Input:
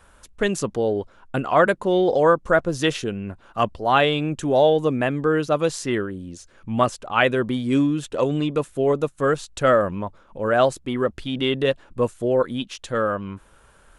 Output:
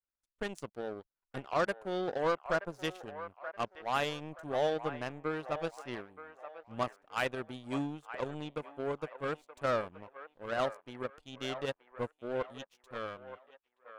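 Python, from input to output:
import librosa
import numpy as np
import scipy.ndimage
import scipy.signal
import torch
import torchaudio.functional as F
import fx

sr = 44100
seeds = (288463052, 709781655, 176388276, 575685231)

y = fx.power_curve(x, sr, exponent=2.0)
y = 10.0 ** (-16.5 / 20.0) * np.tanh(y / 10.0 ** (-16.5 / 20.0))
y = fx.echo_wet_bandpass(y, sr, ms=926, feedback_pct=33, hz=1100.0, wet_db=-10.0)
y = y * 10.0 ** (-4.0 / 20.0)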